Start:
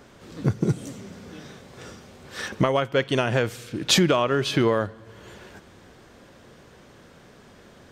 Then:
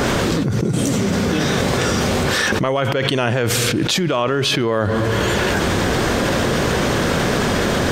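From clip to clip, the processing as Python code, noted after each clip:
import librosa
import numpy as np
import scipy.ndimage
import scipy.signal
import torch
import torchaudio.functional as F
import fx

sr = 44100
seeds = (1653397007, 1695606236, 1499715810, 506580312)

y = fx.env_flatten(x, sr, amount_pct=100)
y = y * librosa.db_to_amplitude(-2.0)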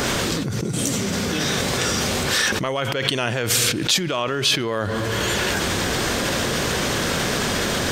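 y = fx.high_shelf(x, sr, hz=2100.0, db=9.5)
y = y * librosa.db_to_amplitude(-6.5)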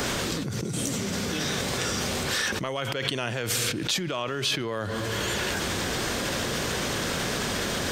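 y = fx.band_squash(x, sr, depth_pct=40)
y = y * librosa.db_to_amplitude(-6.5)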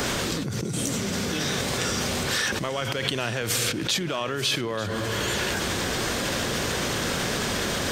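y = fx.echo_feedback(x, sr, ms=891, feedback_pct=37, wet_db=-14.5)
y = y * librosa.db_to_amplitude(1.5)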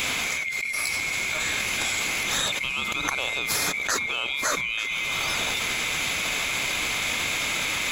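y = fx.band_swap(x, sr, width_hz=2000)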